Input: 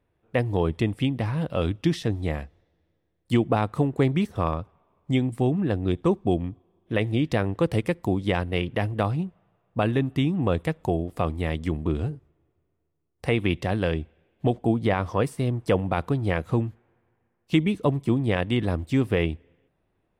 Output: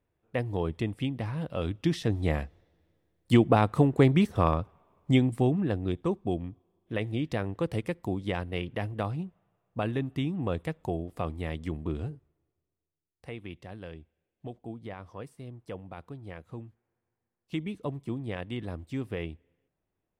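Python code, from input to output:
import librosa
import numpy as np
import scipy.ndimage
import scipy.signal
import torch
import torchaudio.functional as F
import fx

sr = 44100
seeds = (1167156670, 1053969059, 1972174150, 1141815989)

y = fx.gain(x, sr, db=fx.line((1.62, -6.5), (2.37, 1.0), (5.12, 1.0), (6.05, -7.0), (12.07, -7.0), (13.42, -18.0), (16.52, -18.0), (17.7, -11.5)))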